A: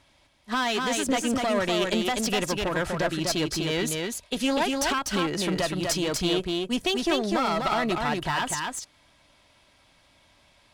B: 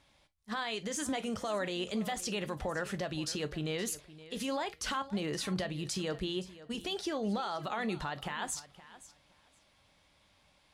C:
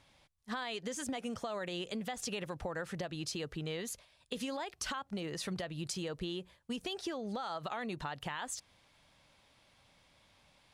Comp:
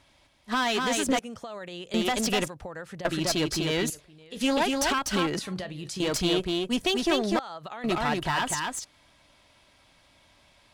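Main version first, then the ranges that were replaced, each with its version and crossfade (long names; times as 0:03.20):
A
0:01.19–0:01.94: punch in from C
0:02.48–0:03.05: punch in from C
0:03.90–0:04.41: punch in from B
0:05.39–0:06.00: punch in from B
0:07.39–0:07.84: punch in from C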